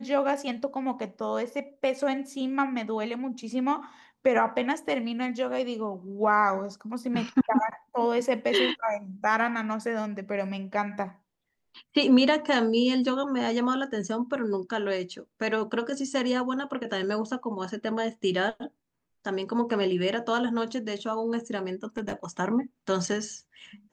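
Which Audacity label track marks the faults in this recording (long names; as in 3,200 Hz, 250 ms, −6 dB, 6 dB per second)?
21.840000	22.250000	clipping −26 dBFS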